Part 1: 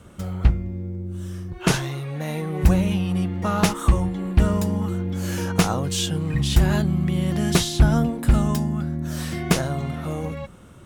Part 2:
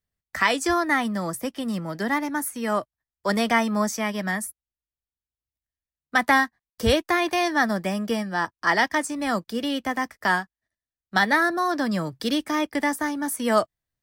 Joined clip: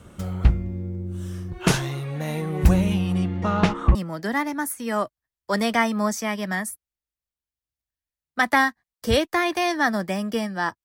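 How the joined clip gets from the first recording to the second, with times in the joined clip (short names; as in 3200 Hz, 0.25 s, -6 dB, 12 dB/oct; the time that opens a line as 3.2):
part 1
3.14–3.95 LPF 9600 Hz -> 1800 Hz
3.95 switch to part 2 from 1.71 s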